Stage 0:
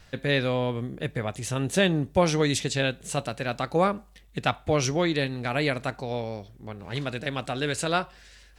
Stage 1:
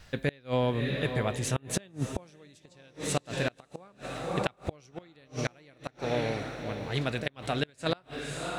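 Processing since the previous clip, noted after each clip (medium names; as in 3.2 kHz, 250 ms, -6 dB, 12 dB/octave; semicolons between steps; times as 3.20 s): echo that smears into a reverb 592 ms, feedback 41%, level -9 dB; inverted gate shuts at -16 dBFS, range -31 dB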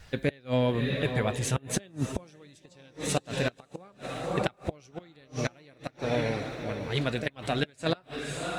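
coarse spectral quantiser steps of 15 dB; trim +2 dB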